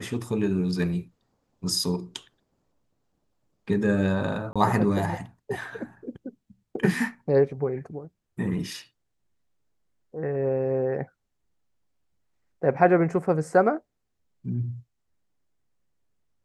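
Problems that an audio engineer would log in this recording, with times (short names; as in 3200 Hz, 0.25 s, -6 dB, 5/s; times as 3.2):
4.53–4.56 gap 26 ms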